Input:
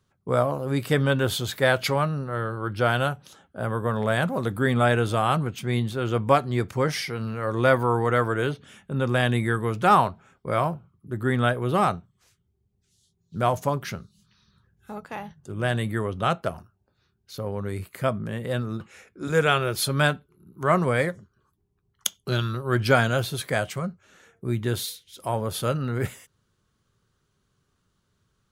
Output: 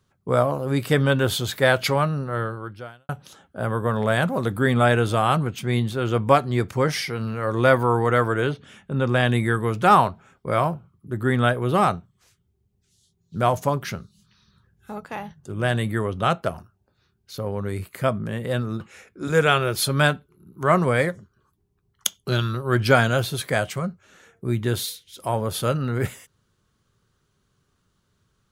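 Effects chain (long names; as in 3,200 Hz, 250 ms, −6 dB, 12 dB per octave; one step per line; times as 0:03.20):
0:02.42–0:03.09: fade out quadratic
0:08.40–0:09.28: high-shelf EQ 9,700 Hz −10.5 dB
level +2.5 dB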